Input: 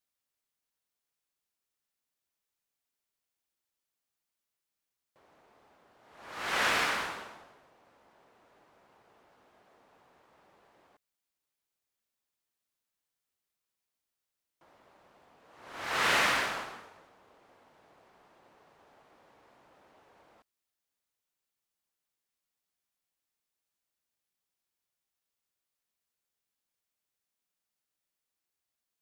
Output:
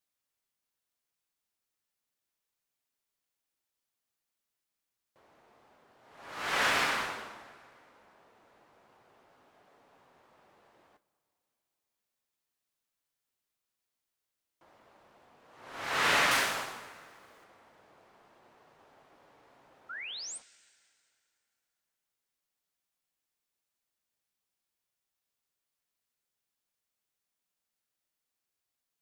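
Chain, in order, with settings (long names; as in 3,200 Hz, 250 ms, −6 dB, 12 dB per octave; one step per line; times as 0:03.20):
0:16.31–0:17.44: high-shelf EQ 5,600 Hz +11.5 dB
0:19.89–0:20.38: sound drawn into the spectrogram rise 1,300–9,200 Hz −41 dBFS
flanger 0.31 Hz, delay 6.8 ms, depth 2.9 ms, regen −63%
dense smooth reverb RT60 3.1 s, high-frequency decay 0.75×, DRR 17 dB
level +4.5 dB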